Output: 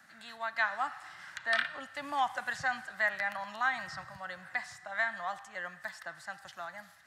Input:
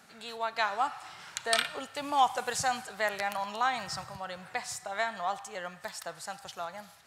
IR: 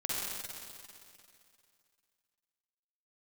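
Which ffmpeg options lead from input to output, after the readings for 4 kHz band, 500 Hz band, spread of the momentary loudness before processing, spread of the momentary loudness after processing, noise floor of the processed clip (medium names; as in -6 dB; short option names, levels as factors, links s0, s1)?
-7.5 dB, -7.0 dB, 13 LU, 13 LU, -56 dBFS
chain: -filter_complex "[0:a]superequalizer=7b=0.251:10b=1.58:11b=3.16,acrossover=split=390|500|4800[s0][s1][s2][s3];[s3]acompressor=threshold=0.00251:ratio=6[s4];[s0][s1][s2][s4]amix=inputs=4:normalize=0,volume=0.501"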